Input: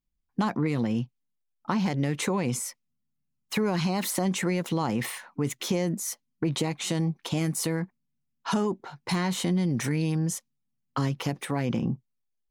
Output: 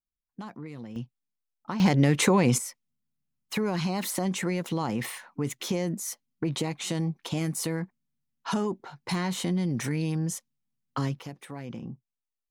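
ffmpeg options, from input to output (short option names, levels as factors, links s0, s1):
-af "asetnsamples=n=441:p=0,asendcmd='0.96 volume volume -6dB;1.8 volume volume 6dB;2.58 volume volume -2dB;11.19 volume volume -11dB',volume=0.2"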